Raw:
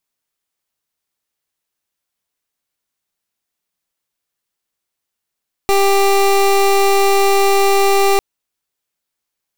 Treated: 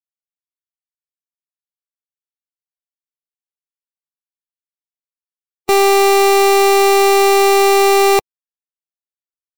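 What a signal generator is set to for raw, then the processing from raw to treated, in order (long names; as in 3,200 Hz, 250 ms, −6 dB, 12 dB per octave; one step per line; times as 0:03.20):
pulse wave 395 Hz, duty 24% −12 dBFS 2.50 s
spectral dynamics exaggerated over time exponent 1.5
high-pass filter 130 Hz 12 dB per octave
leveller curve on the samples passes 2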